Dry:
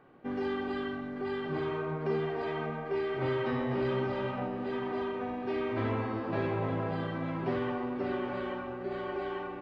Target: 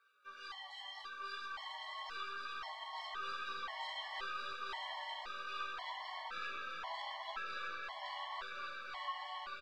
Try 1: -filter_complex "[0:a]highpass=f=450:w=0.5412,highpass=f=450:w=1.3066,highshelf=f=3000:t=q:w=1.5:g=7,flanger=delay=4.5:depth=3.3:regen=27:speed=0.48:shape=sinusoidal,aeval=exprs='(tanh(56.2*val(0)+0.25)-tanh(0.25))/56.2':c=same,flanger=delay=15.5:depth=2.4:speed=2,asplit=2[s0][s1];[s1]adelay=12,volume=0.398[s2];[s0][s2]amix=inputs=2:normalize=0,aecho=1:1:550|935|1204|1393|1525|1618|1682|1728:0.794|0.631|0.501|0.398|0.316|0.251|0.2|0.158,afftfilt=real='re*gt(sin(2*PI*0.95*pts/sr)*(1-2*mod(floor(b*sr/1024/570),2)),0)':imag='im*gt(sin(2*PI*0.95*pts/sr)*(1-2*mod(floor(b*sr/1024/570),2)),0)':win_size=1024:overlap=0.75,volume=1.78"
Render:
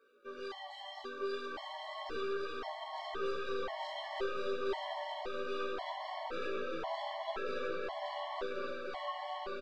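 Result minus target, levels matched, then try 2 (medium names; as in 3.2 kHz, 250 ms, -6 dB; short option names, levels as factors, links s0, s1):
500 Hz band +15.0 dB
-filter_complex "[0:a]highpass=f=960:w=0.5412,highpass=f=960:w=1.3066,highshelf=f=3000:t=q:w=1.5:g=7,flanger=delay=4.5:depth=3.3:regen=27:speed=0.48:shape=sinusoidal,aeval=exprs='(tanh(56.2*val(0)+0.25)-tanh(0.25))/56.2':c=same,flanger=delay=15.5:depth=2.4:speed=2,asplit=2[s0][s1];[s1]adelay=12,volume=0.398[s2];[s0][s2]amix=inputs=2:normalize=0,aecho=1:1:550|935|1204|1393|1525|1618|1682|1728:0.794|0.631|0.501|0.398|0.316|0.251|0.2|0.158,afftfilt=real='re*gt(sin(2*PI*0.95*pts/sr)*(1-2*mod(floor(b*sr/1024/570),2)),0)':imag='im*gt(sin(2*PI*0.95*pts/sr)*(1-2*mod(floor(b*sr/1024/570),2)),0)':win_size=1024:overlap=0.75,volume=1.78"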